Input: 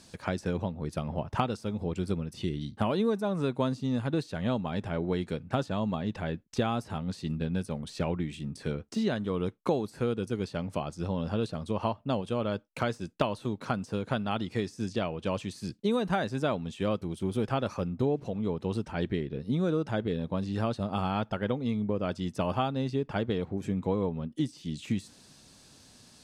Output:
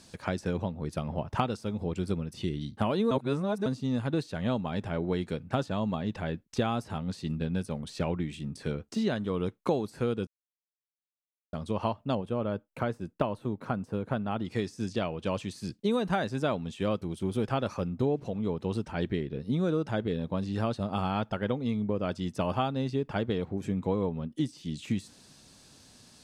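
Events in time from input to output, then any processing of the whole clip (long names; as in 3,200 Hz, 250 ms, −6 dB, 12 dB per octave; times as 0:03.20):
0:03.11–0:03.66: reverse
0:10.27–0:11.53: silence
0:12.15–0:14.45: parametric band 5,600 Hz −13 dB 2.3 octaves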